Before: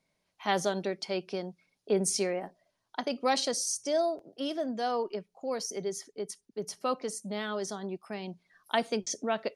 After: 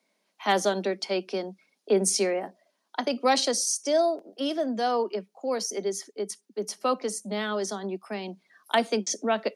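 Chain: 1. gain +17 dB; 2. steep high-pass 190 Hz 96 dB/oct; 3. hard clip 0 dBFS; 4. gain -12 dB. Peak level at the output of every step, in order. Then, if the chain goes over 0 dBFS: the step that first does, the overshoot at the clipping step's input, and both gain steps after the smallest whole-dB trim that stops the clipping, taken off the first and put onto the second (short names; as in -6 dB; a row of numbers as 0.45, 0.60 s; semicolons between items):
+4.5, +3.5, 0.0, -12.0 dBFS; step 1, 3.5 dB; step 1 +13 dB, step 4 -8 dB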